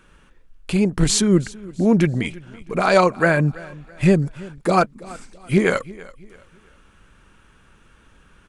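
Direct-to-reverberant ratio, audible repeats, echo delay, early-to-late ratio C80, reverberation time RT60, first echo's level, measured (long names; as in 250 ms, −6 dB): no reverb audible, 2, 331 ms, no reverb audible, no reverb audible, −20.5 dB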